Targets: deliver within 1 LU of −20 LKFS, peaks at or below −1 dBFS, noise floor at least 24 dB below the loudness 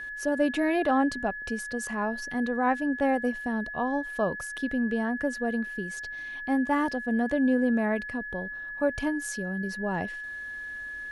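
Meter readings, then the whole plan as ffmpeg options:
interfering tone 1,700 Hz; level of the tone −35 dBFS; integrated loudness −28.5 LKFS; sample peak −13.0 dBFS; target loudness −20.0 LKFS
→ -af "bandreject=frequency=1700:width=30"
-af "volume=8.5dB"

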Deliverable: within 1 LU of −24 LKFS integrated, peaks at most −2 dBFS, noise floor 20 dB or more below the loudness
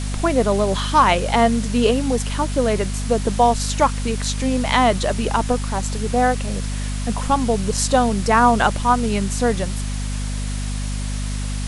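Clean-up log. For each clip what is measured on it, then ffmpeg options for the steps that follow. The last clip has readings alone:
mains hum 50 Hz; hum harmonics up to 250 Hz; level of the hum −22 dBFS; background noise floor −25 dBFS; target noise floor −40 dBFS; integrated loudness −20.0 LKFS; sample peak −2.0 dBFS; target loudness −24.0 LKFS
→ -af "bandreject=frequency=50:width_type=h:width=4,bandreject=frequency=100:width_type=h:width=4,bandreject=frequency=150:width_type=h:width=4,bandreject=frequency=200:width_type=h:width=4,bandreject=frequency=250:width_type=h:width=4"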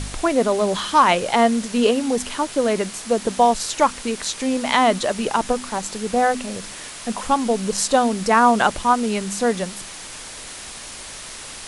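mains hum none found; background noise floor −36 dBFS; target noise floor −40 dBFS
→ -af "afftdn=noise_reduction=6:noise_floor=-36"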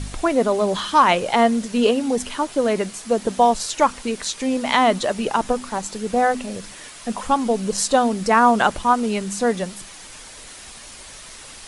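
background noise floor −40 dBFS; integrated loudness −20.0 LKFS; sample peak −2.5 dBFS; target loudness −24.0 LKFS
→ -af "volume=-4dB"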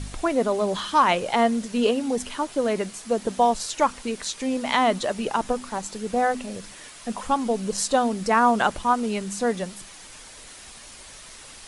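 integrated loudness −24.0 LKFS; sample peak −6.5 dBFS; background noise floor −44 dBFS

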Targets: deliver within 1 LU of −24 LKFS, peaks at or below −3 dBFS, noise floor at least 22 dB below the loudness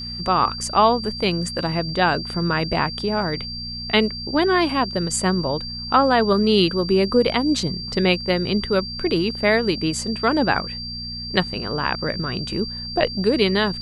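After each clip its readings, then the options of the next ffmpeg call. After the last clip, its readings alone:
mains hum 60 Hz; hum harmonics up to 240 Hz; level of the hum −34 dBFS; interfering tone 4,700 Hz; level of the tone −30 dBFS; integrated loudness −21.0 LKFS; sample peak −2.5 dBFS; target loudness −24.0 LKFS
→ -af "bandreject=frequency=60:width_type=h:width=4,bandreject=frequency=120:width_type=h:width=4,bandreject=frequency=180:width_type=h:width=4,bandreject=frequency=240:width_type=h:width=4"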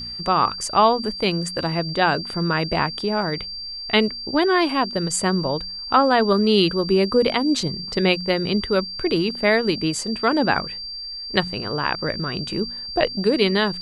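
mains hum none found; interfering tone 4,700 Hz; level of the tone −30 dBFS
→ -af "bandreject=frequency=4700:width=30"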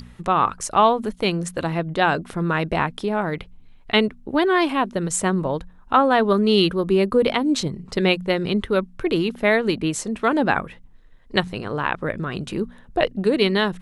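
interfering tone none found; integrated loudness −21.5 LKFS; sample peak −3.0 dBFS; target loudness −24.0 LKFS
→ -af "volume=-2.5dB"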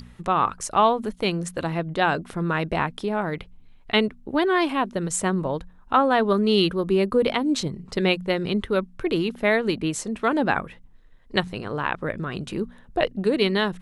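integrated loudness −24.0 LKFS; sample peak −5.5 dBFS; background noise floor −50 dBFS

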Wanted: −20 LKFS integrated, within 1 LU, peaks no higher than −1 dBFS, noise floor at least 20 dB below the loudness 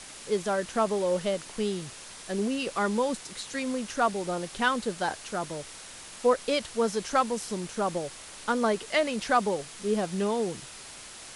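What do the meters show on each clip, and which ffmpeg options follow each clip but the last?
background noise floor −45 dBFS; target noise floor −49 dBFS; integrated loudness −29.0 LKFS; sample peak −11.5 dBFS; target loudness −20.0 LKFS
→ -af "afftdn=noise_reduction=6:noise_floor=-45"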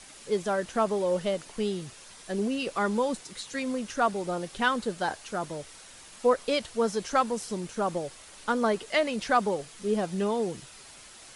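background noise floor −49 dBFS; integrated loudness −29.0 LKFS; sample peak −11.5 dBFS; target loudness −20.0 LKFS
→ -af "volume=9dB"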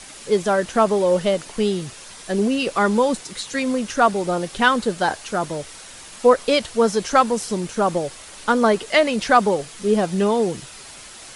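integrated loudness −20.0 LKFS; sample peak −2.5 dBFS; background noise floor −40 dBFS

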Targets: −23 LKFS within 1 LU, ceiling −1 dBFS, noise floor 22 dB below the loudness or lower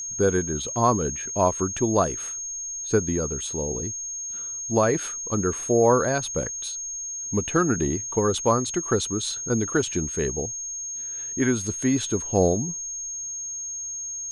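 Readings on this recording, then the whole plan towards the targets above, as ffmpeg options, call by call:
interfering tone 6,500 Hz; level of the tone −30 dBFS; integrated loudness −25.0 LKFS; sample peak −7.0 dBFS; target loudness −23.0 LKFS
→ -af "bandreject=frequency=6500:width=30"
-af "volume=2dB"

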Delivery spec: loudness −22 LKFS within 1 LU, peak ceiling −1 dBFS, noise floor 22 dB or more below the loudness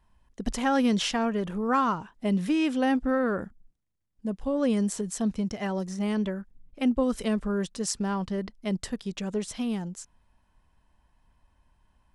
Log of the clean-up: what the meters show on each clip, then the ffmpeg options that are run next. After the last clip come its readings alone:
integrated loudness −28.5 LKFS; sample peak −10.5 dBFS; target loudness −22.0 LKFS
→ -af "volume=6.5dB"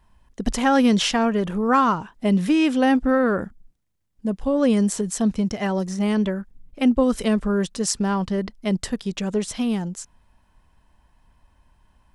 integrated loudness −22.0 LKFS; sample peak −4.0 dBFS; background noise floor −63 dBFS

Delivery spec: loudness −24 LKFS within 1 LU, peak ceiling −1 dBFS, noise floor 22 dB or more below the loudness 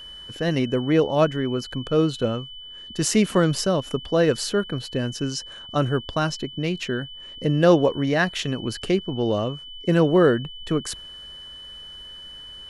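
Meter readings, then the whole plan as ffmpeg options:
interfering tone 3,000 Hz; level of the tone −38 dBFS; integrated loudness −23.0 LKFS; sample peak −3.5 dBFS; target loudness −24.0 LKFS
→ -af "bandreject=frequency=3000:width=30"
-af "volume=-1dB"

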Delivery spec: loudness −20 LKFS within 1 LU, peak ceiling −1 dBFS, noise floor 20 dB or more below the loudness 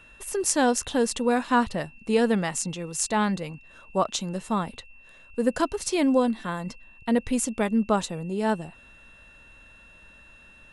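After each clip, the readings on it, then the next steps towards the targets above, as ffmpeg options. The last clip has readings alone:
interfering tone 2,700 Hz; level of the tone −51 dBFS; integrated loudness −26.0 LKFS; sample peak −4.5 dBFS; target loudness −20.0 LKFS
→ -af "bandreject=frequency=2700:width=30"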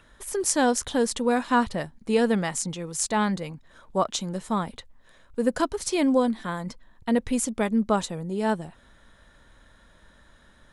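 interfering tone none found; integrated loudness −26.0 LKFS; sample peak −4.5 dBFS; target loudness −20.0 LKFS
→ -af "volume=6dB,alimiter=limit=-1dB:level=0:latency=1"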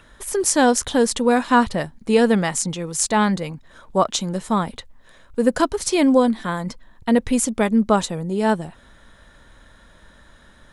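integrated loudness −20.0 LKFS; sample peak −1.0 dBFS; background noise floor −51 dBFS

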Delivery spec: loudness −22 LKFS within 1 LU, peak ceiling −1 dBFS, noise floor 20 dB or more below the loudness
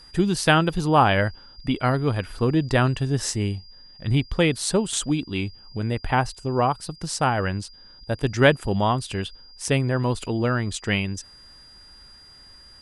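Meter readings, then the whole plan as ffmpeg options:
interfering tone 4,800 Hz; level of the tone −47 dBFS; integrated loudness −23.5 LKFS; sample peak −3.5 dBFS; target loudness −22.0 LKFS
→ -af "bandreject=frequency=4800:width=30"
-af "volume=1.5dB"

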